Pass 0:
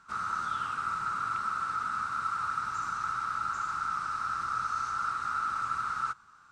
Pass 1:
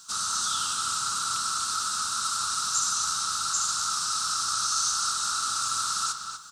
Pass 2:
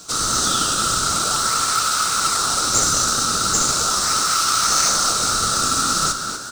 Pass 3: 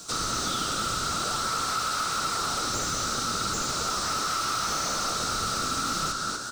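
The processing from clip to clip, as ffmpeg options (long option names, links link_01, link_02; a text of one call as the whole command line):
ffmpeg -i in.wav -filter_complex "[0:a]asplit=2[link_01][link_02];[link_02]adelay=245,lowpass=frequency=4100:poles=1,volume=-5.5dB,asplit=2[link_03][link_04];[link_04]adelay=245,lowpass=frequency=4100:poles=1,volume=0.32,asplit=2[link_05][link_06];[link_06]adelay=245,lowpass=frequency=4100:poles=1,volume=0.32,asplit=2[link_07][link_08];[link_08]adelay=245,lowpass=frequency=4100:poles=1,volume=0.32[link_09];[link_03][link_05][link_07][link_09]amix=inputs=4:normalize=0[link_10];[link_01][link_10]amix=inputs=2:normalize=0,aexciter=amount=12.6:drive=8.2:freq=3400,highpass=52,volume=-1.5dB" out.wav
ffmpeg -i in.wav -filter_complex "[0:a]asplit=2[link_01][link_02];[link_02]acrusher=samples=23:mix=1:aa=0.000001:lfo=1:lforange=36.8:lforate=0.39,volume=-10dB[link_03];[link_01][link_03]amix=inputs=2:normalize=0,asplit=9[link_04][link_05][link_06][link_07][link_08][link_09][link_10][link_11][link_12];[link_05]adelay=226,afreqshift=41,volume=-13dB[link_13];[link_06]adelay=452,afreqshift=82,volume=-16.7dB[link_14];[link_07]adelay=678,afreqshift=123,volume=-20.5dB[link_15];[link_08]adelay=904,afreqshift=164,volume=-24.2dB[link_16];[link_09]adelay=1130,afreqshift=205,volume=-28dB[link_17];[link_10]adelay=1356,afreqshift=246,volume=-31.7dB[link_18];[link_11]adelay=1582,afreqshift=287,volume=-35.5dB[link_19];[link_12]adelay=1808,afreqshift=328,volume=-39.2dB[link_20];[link_04][link_13][link_14][link_15][link_16][link_17][link_18][link_19][link_20]amix=inputs=9:normalize=0,acrusher=bits=4:mode=log:mix=0:aa=0.000001,volume=8dB" out.wav
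ffmpeg -i in.wav -filter_complex "[0:a]acrossover=split=950[link_01][link_02];[link_02]asoftclip=type=hard:threshold=-21dB[link_03];[link_01][link_03]amix=inputs=2:normalize=0,acrossover=split=1100|6100[link_04][link_05][link_06];[link_04]acompressor=threshold=-30dB:ratio=4[link_07];[link_05]acompressor=threshold=-26dB:ratio=4[link_08];[link_06]acompressor=threshold=-40dB:ratio=4[link_09];[link_07][link_08][link_09]amix=inputs=3:normalize=0,volume=-2.5dB" out.wav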